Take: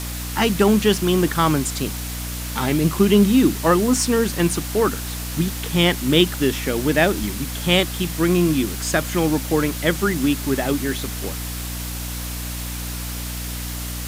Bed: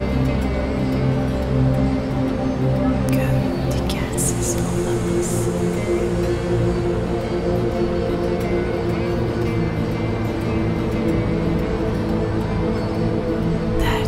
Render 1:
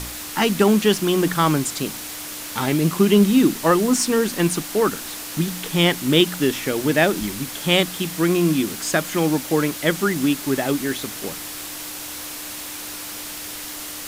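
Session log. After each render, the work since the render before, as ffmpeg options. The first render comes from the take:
-af "bandreject=f=60:t=h:w=4,bandreject=f=120:t=h:w=4,bandreject=f=180:t=h:w=4,bandreject=f=240:t=h:w=4"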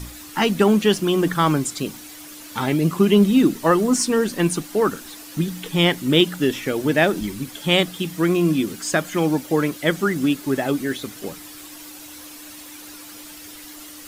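-af "afftdn=nr=10:nf=-33"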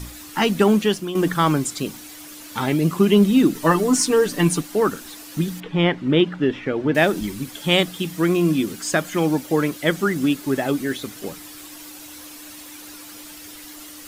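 -filter_complex "[0:a]asettb=1/sr,asplit=3[s0][s1][s2];[s0]atrim=end=3.544[s3];[s1]atrim=start=3.54:end=4.61,asetpts=PTS-STARTPTS,afade=t=in:d=0.004:c=qsin,afade=t=out:st=1.066:d=0.004:c=qsin,aecho=1:1:6.8:0.72,atrim=end_sample=47187[s4];[s2]atrim=start=4.606[s5];[s3][s4]acrossfade=d=0.004:c1=hsin:c2=qsin[s6];[s6][s5]acrossfade=d=0.004:c1=qsin:c2=hsin,asettb=1/sr,asplit=3[s7][s8][s9];[s7]atrim=end=5.604[s10];[s8]atrim=start=5.6:end=6.95,asetpts=PTS-STARTPTS,afade=t=in:d=0.004:c=qsin,afade=t=out:st=1.346:d=0.004:c=qsin,lowpass=2300[s11];[s9]atrim=start=6.946[s12];[s10][s11]acrossfade=d=0.004:c1=hsin:c2=qsin[s13];[s13][s12]acrossfade=d=0.004:c1=qsin:c2=hsin,asplit=2[s14][s15];[s14]atrim=end=1.15,asetpts=PTS-STARTPTS,afade=t=out:st=0.75:d=0.4:silence=0.281838[s16];[s15]atrim=start=1.15,asetpts=PTS-STARTPTS,afade=t=in:d=0.004:c=hsin:silence=0.281838[s17];[s16][s17]concat=n=2:v=0:a=1"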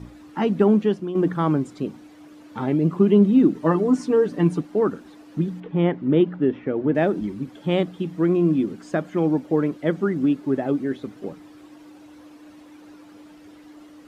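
-af "bandpass=f=280:t=q:w=0.51:csg=0"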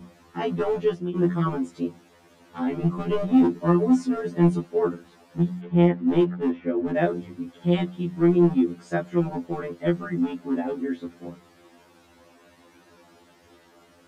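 -filter_complex "[0:a]acrossover=split=500[s0][s1];[s0]asoftclip=type=hard:threshold=0.15[s2];[s2][s1]amix=inputs=2:normalize=0,afftfilt=real='re*2*eq(mod(b,4),0)':imag='im*2*eq(mod(b,4),0)':win_size=2048:overlap=0.75"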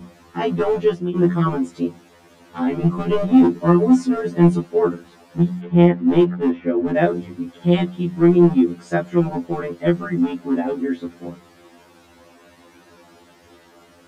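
-af "volume=1.88"

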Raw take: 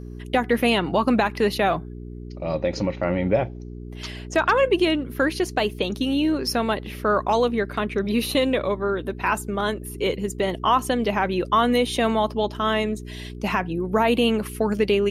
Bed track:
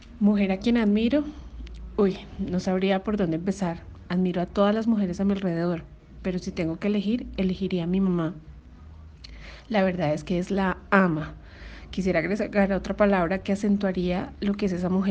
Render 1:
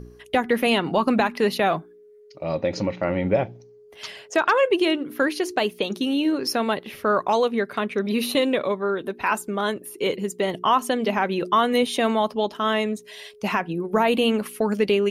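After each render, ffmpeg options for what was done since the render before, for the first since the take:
-af "bandreject=f=60:t=h:w=4,bandreject=f=120:t=h:w=4,bandreject=f=180:t=h:w=4,bandreject=f=240:t=h:w=4,bandreject=f=300:t=h:w=4,bandreject=f=360:t=h:w=4"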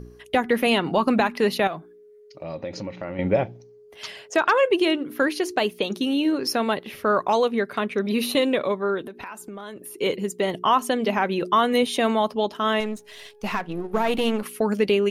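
-filter_complex "[0:a]asettb=1/sr,asplit=3[s0][s1][s2];[s0]atrim=end=1.674[s3];[s1]atrim=start=1.67:end=3.19,asetpts=PTS-STARTPTS,afade=t=in:d=0.004:c=qsin,afade=t=out:st=1.516:d=0.004:c=qsin,acompressor=threshold=0.02:ratio=2:attack=3.2:release=140:knee=1:detection=peak[s4];[s2]atrim=start=3.186[s5];[s3][s4]acrossfade=d=0.004:c1=hsin:c2=qsin[s6];[s6][s5]acrossfade=d=0.004:c1=qsin:c2=hsin,asettb=1/sr,asplit=3[s7][s8][s9];[s7]atrim=end=9.034[s10];[s8]atrim=start=9.03:end=9.98,asetpts=PTS-STARTPTS,afade=t=in:d=0.004:c=qsin,afade=t=out:st=0.946:d=0.004:c=qsin,acompressor=threshold=0.0224:ratio=8:attack=3.2:release=140:knee=1:detection=peak[s11];[s9]atrim=start=9.976[s12];[s10][s11]acrossfade=d=0.004:c1=hsin:c2=qsin[s13];[s13][s12]acrossfade=d=0.004:c1=qsin:c2=hsin,asettb=1/sr,asplit=3[s14][s15][s16];[s14]atrim=end=12.804[s17];[s15]atrim=start=12.8:end=14.43,asetpts=PTS-STARTPTS,afade=t=in:d=0.004:c=qsin,afade=t=out:st=1.626:d=0.004:c=qsin,aeval=exprs='if(lt(val(0),0),0.447*val(0),val(0))':c=same[s18];[s16]atrim=start=14.426[s19];[s17][s18]acrossfade=d=0.004:c1=hsin:c2=qsin[s20];[s20][s19]acrossfade=d=0.004:c1=qsin:c2=hsin"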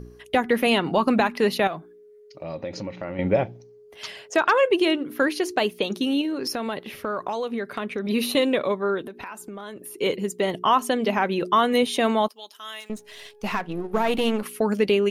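-filter_complex "[0:a]asettb=1/sr,asplit=3[s0][s1][s2];[s0]atrim=end=6.214[s3];[s1]atrim=start=6.21:end=8.09,asetpts=PTS-STARTPTS,afade=t=in:d=0.004:c=qsin,afade=t=out:st=1.876:d=0.004:c=qsin,acompressor=threshold=0.0631:ratio=5:attack=3.2:release=140:knee=1:detection=peak[s4];[s2]atrim=start=8.086[s5];[s3][s4]acrossfade=d=0.004:c1=hsin:c2=qsin[s6];[s6][s5]acrossfade=d=0.004:c1=qsin:c2=hsin,asettb=1/sr,asplit=3[s7][s8][s9];[s7]atrim=end=12.284[s10];[s8]atrim=start=12.28:end=12.9,asetpts=PTS-STARTPTS,afade=t=in:d=0.004:c=qsin,afade=t=out:st=0.616:d=0.004:c=qsin,aderivative[s11];[s9]atrim=start=12.896[s12];[s10][s11]acrossfade=d=0.004:c1=hsin:c2=qsin[s13];[s13][s12]acrossfade=d=0.004:c1=qsin:c2=hsin"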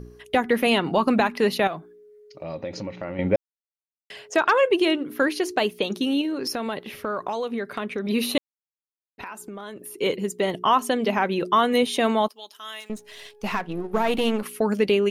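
-filter_complex "[0:a]asplit=5[s0][s1][s2][s3][s4];[s0]atrim=end=3.36,asetpts=PTS-STARTPTS,afade=t=out:st=3.356:d=0.004:c=hsin[s5];[s1]atrim=start=3.36:end=4.1,asetpts=PTS-STARTPTS,volume=0[s6];[s2]atrim=start=4.1:end=8.38,asetpts=PTS-STARTPTS,afade=t=in:d=0.004:c=hsin,afade=t=out:st=4.276:d=0.004:c=hsin[s7];[s3]atrim=start=8.38:end=9.18,asetpts=PTS-STARTPTS,volume=0[s8];[s4]atrim=start=9.18,asetpts=PTS-STARTPTS,afade=t=in:d=0.004:c=hsin[s9];[s5][s6][s7][s8][s9]concat=n=5:v=0:a=1"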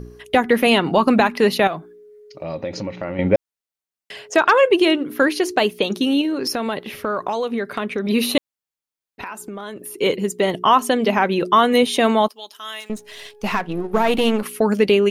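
-af "volume=1.78"

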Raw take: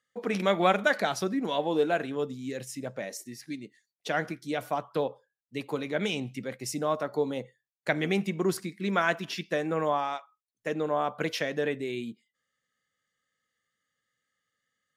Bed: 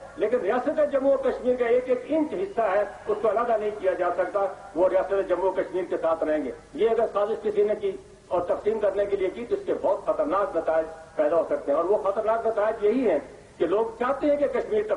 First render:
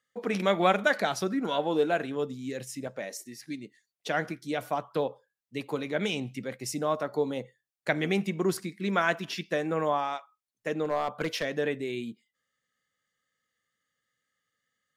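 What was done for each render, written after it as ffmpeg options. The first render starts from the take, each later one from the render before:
-filter_complex "[0:a]asettb=1/sr,asplit=3[s0][s1][s2];[s0]atrim=end=1.304[s3];[s1]atrim=start=1.3:end=1.74,asetpts=PTS-STARTPTS,afade=t=in:d=0.004:c=qsin,afade=t=out:st=0.436:d=0.004:c=qsin,equalizer=f=1400:w=6.6:g=14[s4];[s2]atrim=start=1.736[s5];[s3][s4]acrossfade=d=0.004:c1=hsin:c2=qsin[s6];[s6][s5]acrossfade=d=0.004:c1=qsin:c2=hsin,asettb=1/sr,asplit=3[s7][s8][s9];[s7]atrim=end=2.874[s10];[s8]atrim=start=2.87:end=3.43,asetpts=PTS-STARTPTS,afade=t=in:d=0.004:c=qsin,afade=t=out:st=0.556:d=0.004:c=qsin,equalizer=f=83:t=o:w=2.4:g=-6.5[s11];[s9]atrim=start=3.426[s12];[s10][s11]acrossfade=d=0.004:c1=hsin:c2=qsin[s13];[s13][s12]acrossfade=d=0.004:c1=qsin:c2=hsin,asettb=1/sr,asplit=3[s14][s15][s16];[s14]atrim=end=10.854[s17];[s15]atrim=start=10.85:end=11.45,asetpts=PTS-STARTPTS,afade=t=in:d=0.004:c=qsin,afade=t=out:st=0.596:d=0.004:c=qsin,aeval=exprs='clip(val(0),-1,0.0631)':c=same[s18];[s16]atrim=start=11.446[s19];[s17][s18]acrossfade=d=0.004:c1=hsin:c2=qsin[s20];[s20][s19]acrossfade=d=0.004:c1=qsin:c2=hsin"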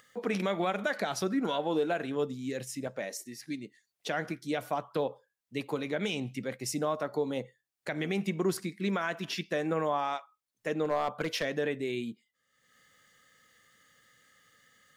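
-af "alimiter=limit=0.1:level=0:latency=1:release=144,acompressor=mode=upward:threshold=0.00398:ratio=2.5"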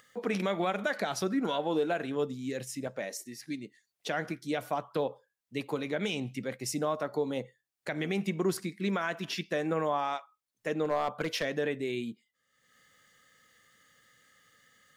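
-af anull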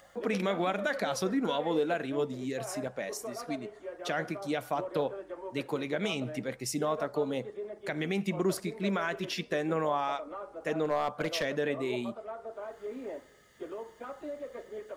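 -filter_complex "[1:a]volume=0.133[s0];[0:a][s0]amix=inputs=2:normalize=0"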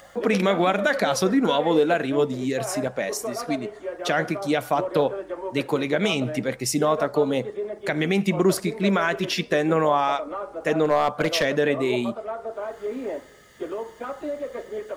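-af "volume=2.99"

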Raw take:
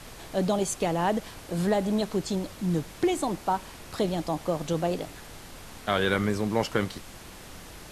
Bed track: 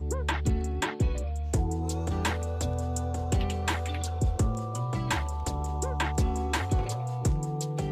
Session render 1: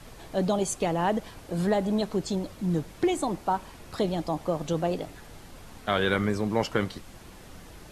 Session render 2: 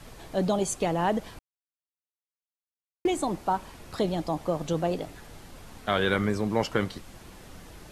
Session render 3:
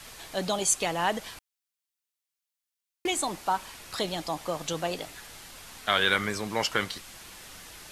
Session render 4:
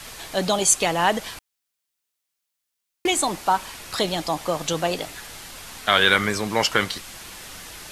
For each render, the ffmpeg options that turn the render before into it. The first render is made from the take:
-af "afftdn=nr=6:nf=-45"
-filter_complex "[0:a]asplit=3[s0][s1][s2];[s0]atrim=end=1.39,asetpts=PTS-STARTPTS,afade=t=out:st=1.386:d=0.004:c=hsin[s3];[s1]atrim=start=1.39:end=3.05,asetpts=PTS-STARTPTS,volume=0[s4];[s2]atrim=start=3.05,asetpts=PTS-STARTPTS,afade=t=in:d=0.004:c=hsin[s5];[s3][s4][s5]concat=n=3:v=0:a=1"
-af "tiltshelf=f=910:g=-8.5"
-af "volume=2.24,alimiter=limit=0.794:level=0:latency=1"

